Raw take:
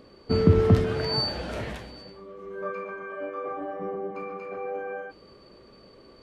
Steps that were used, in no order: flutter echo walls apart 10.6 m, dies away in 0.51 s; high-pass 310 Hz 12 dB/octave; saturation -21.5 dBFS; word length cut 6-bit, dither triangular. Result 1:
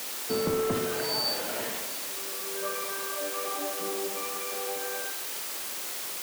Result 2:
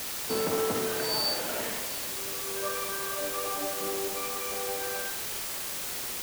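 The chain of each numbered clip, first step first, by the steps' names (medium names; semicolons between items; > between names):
word length cut > high-pass > saturation > flutter echo; saturation > high-pass > word length cut > flutter echo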